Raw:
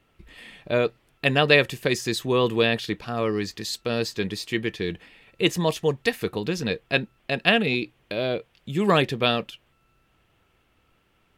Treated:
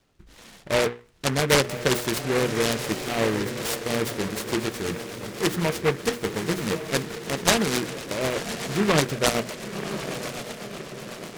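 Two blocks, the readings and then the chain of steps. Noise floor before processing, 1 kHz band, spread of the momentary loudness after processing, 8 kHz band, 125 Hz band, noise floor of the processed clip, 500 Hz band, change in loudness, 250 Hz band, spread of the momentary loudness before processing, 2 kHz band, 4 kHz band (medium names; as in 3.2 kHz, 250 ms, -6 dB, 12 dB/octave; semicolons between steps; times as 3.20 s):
-66 dBFS, +0.5 dB, 12 LU, +10.0 dB, 0.0 dB, -50 dBFS, -1.0 dB, -1.0 dB, 0.0 dB, 10 LU, -2.5 dB, -1.0 dB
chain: hum notches 60/120/180/240/300/360/420/480 Hz; on a send: echo that smears into a reverb 1058 ms, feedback 54%, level -9 dB; on the sum: rotary cabinet horn 0.9 Hz, later 8 Hz, at 3.35 s; delay time shaken by noise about 1.4 kHz, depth 0.14 ms; trim +1.5 dB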